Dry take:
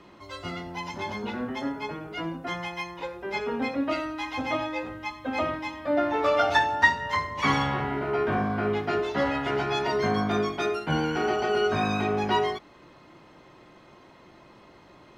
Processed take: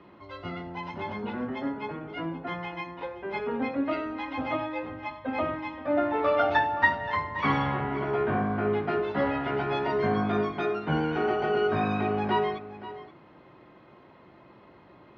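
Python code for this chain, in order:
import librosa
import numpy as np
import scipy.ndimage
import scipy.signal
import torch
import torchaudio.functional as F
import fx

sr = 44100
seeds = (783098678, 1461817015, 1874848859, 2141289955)

y = scipy.signal.sosfilt(scipy.signal.butter(2, 63.0, 'highpass', fs=sr, output='sos'), x)
y = fx.air_absorb(y, sr, metres=320.0)
y = y + 10.0 ** (-15.0 / 20.0) * np.pad(y, (int(525 * sr / 1000.0), 0))[:len(y)]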